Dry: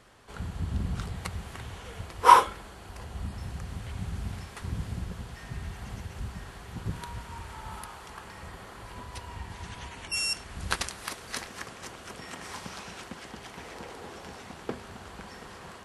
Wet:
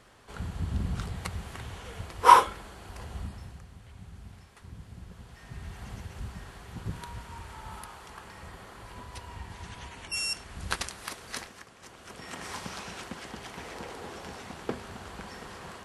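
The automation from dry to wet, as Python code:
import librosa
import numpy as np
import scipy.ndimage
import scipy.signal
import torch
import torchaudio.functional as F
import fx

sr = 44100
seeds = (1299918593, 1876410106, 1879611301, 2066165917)

y = fx.gain(x, sr, db=fx.line((3.15, 0.0), (3.71, -12.0), (4.87, -12.0), (5.81, -2.0), (11.42, -2.0), (11.66, -11.0), (12.39, 1.5)))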